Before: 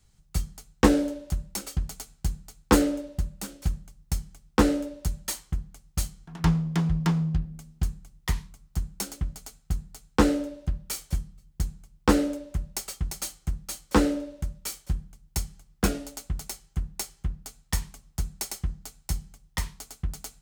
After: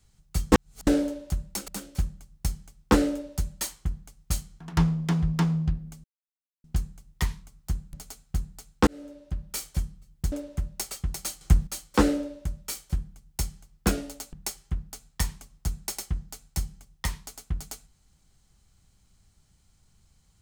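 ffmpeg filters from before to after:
-filter_complex "[0:a]asplit=11[s0][s1][s2][s3][s4][s5][s6][s7][s8][s9][s10];[s0]atrim=end=0.522[s11];[s1]atrim=start=0.518:end=0.872,asetpts=PTS-STARTPTS,areverse[s12];[s2]atrim=start=0.868:end=1.682[s13];[s3]atrim=start=3.348:end=7.71,asetpts=PTS-STARTPTS,afade=t=out:st=4.358:d=0.004:c=hsin,apad=pad_dur=0.6[s14];[s4]atrim=start=7.71:end=9.002,asetpts=PTS-STARTPTS,afade=t=in:d=0.004:c=hsin[s15];[s5]atrim=start=9.288:end=10.23,asetpts=PTS-STARTPTS,afade=t=out:st=0.938:d=0.004:c=hsin[s16];[s6]atrim=start=10.23:end=11.682,asetpts=PTS-STARTPTS,afade=t=in:d=0.72[s17];[s7]atrim=start=12.288:end=13.382[s18];[s8]atrim=start=13.378:end=13.642,asetpts=PTS-STARTPTS,volume=3.35[s19];[s9]atrim=start=13.638:end=16.302[s20];[s10]atrim=start=16.858[s21];[s11][s12]acrossfade=d=0.004:c1=hsin:c2=hsin[s22];[s22][s13]acrossfade=d=0.004:c1=hsin:c2=hsin[s23];[s14][s15]concat=n=2:v=0:a=1[s24];[s23][s24]acrossfade=d=0.004:c1=hsin:c2=hsin[s25];[s16][s17]concat=n=2:v=0:a=1[s26];[s25][s26]acrossfade=d=0.004:c1=hsin:c2=hsin[s27];[s27][s18]acrossfade=d=0.004:c1=hsin:c2=hsin[s28];[s28][s19]acrossfade=d=0.004:c1=hsin:c2=hsin[s29];[s29][s20]acrossfade=d=0.004:c1=hsin:c2=hsin[s30];[s30][s21]acrossfade=d=0.004:c1=hsin:c2=hsin"

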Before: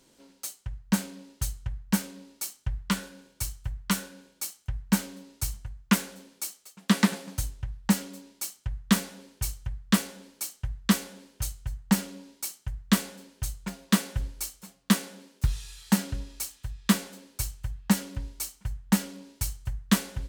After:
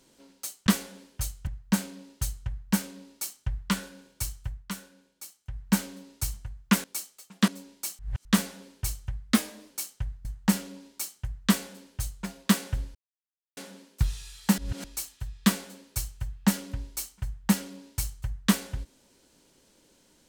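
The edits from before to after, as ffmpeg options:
-filter_complex "[0:a]asplit=16[s0][s1][s2][s3][s4][s5][s6][s7][s8][s9][s10][s11][s12][s13][s14][s15];[s0]atrim=end=0.672[s16];[s1]atrim=start=10.878:end=11.682[s17];[s2]atrim=start=0.668:end=3.89,asetpts=PTS-STARTPTS,afade=t=out:st=2.952:d=0.27:silence=0.334965[s18];[s3]atrim=start=3.89:end=4.63,asetpts=PTS-STARTPTS,volume=0.335[s19];[s4]atrim=start=4.63:end=6.042,asetpts=PTS-STARTPTS,afade=t=in:d=0.27:silence=0.334965[s20];[s5]atrim=start=6.308:end=6.952[s21];[s6]atrim=start=8.058:end=8.572[s22];[s7]atrim=start=8.568:end=8.832,asetpts=PTS-STARTPTS,areverse[s23];[s8]atrim=start=8.828:end=9.824[s24];[s9]atrim=start=9.82:end=10.33,asetpts=PTS-STARTPTS,asetrate=48951,aresample=44100,atrim=end_sample=20262,asetpts=PTS-STARTPTS[s25];[s10]atrim=start=10.326:end=10.882[s26];[s11]atrim=start=11.678:end=14.38,asetpts=PTS-STARTPTS,afade=t=out:st=2.698:d=0.004:c=hsin[s27];[s12]atrim=start=14.38:end=15,asetpts=PTS-STARTPTS,volume=0[s28];[s13]atrim=start=15:end=16.012,asetpts=PTS-STARTPTS,afade=t=in:d=0.004:c=hsin[s29];[s14]atrim=start=16.008:end=16.272,asetpts=PTS-STARTPTS,areverse[s30];[s15]atrim=start=16.268[s31];[s16][s17]acrossfade=d=0.004:c1=hsin:c2=hsin[s32];[s18][s19][s20]concat=n=3:v=0:a=1[s33];[s32][s33]acrossfade=d=0.004:c1=hsin:c2=hsin[s34];[s34][s21]acrossfade=d=0.004:c1=hsin:c2=hsin[s35];[s35][s22]acrossfade=d=0.004:c1=hsin:c2=hsin[s36];[s36][s23]acrossfade=d=0.004:c1=hsin:c2=hsin[s37];[s37][s24]acrossfade=d=0.004:c1=hsin:c2=hsin[s38];[s38][s25]acrossfade=d=0.004:c1=hsin:c2=hsin[s39];[s39][s26]acrossfade=d=0.004:c1=hsin:c2=hsin[s40];[s27][s28][s29]concat=n=3:v=0:a=1[s41];[s40][s41]acrossfade=d=0.004:c1=hsin:c2=hsin[s42];[s42][s30]acrossfade=d=0.004:c1=hsin:c2=hsin[s43];[s43][s31]acrossfade=d=0.004:c1=hsin:c2=hsin"

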